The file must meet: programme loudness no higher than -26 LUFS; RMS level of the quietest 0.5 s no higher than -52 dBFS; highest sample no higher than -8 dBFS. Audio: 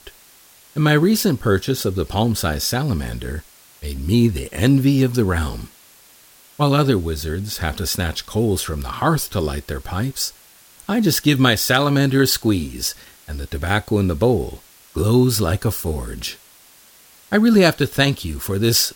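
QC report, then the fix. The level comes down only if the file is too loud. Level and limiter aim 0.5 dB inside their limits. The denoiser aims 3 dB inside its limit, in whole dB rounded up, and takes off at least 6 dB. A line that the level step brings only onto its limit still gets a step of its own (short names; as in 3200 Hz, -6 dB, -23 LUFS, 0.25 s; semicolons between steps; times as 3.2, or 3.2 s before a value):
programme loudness -19.0 LUFS: fail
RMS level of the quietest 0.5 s -49 dBFS: fail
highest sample -2.5 dBFS: fail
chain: gain -7.5 dB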